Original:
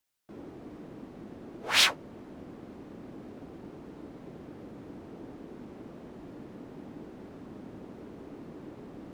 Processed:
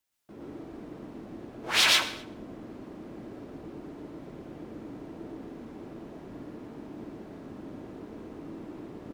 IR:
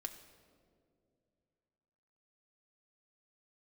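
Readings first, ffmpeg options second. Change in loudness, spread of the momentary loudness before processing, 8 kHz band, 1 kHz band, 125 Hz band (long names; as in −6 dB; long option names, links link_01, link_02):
0.0 dB, 15 LU, +2.5 dB, +2.5 dB, +1.5 dB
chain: -filter_complex "[0:a]asplit=2[link_01][link_02];[link_02]adelay=250.7,volume=-24dB,highshelf=frequency=4000:gain=-5.64[link_03];[link_01][link_03]amix=inputs=2:normalize=0,asplit=2[link_04][link_05];[1:a]atrim=start_sample=2205,afade=type=out:start_time=0.25:duration=0.01,atrim=end_sample=11466,adelay=117[link_06];[link_05][link_06]afir=irnorm=-1:irlink=0,volume=3.5dB[link_07];[link_04][link_07]amix=inputs=2:normalize=0,volume=-1dB"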